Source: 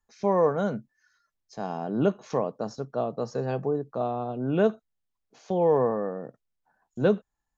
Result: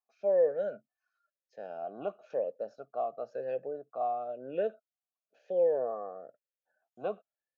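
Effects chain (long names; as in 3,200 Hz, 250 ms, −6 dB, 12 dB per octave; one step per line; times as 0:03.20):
formant filter swept between two vowels a-e 0.99 Hz
level +1.5 dB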